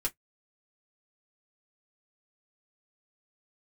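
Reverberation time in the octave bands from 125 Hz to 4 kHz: 0.10 s, 0.10 s, 0.10 s, 0.10 s, 0.10 s, 0.10 s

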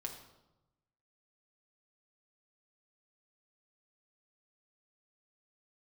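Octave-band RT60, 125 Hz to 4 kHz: 1.4 s, 1.1 s, 1.0 s, 0.95 s, 0.70 s, 0.70 s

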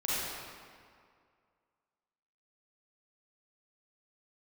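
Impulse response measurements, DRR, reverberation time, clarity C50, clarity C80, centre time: -9.0 dB, 2.1 s, -6.0 dB, -2.5 dB, 158 ms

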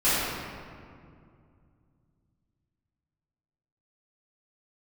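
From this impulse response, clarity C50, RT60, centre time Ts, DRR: -4.0 dB, 2.3 s, 144 ms, -14.5 dB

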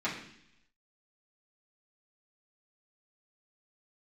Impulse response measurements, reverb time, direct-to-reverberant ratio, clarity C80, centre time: 0.70 s, -9.0 dB, 9.5 dB, 32 ms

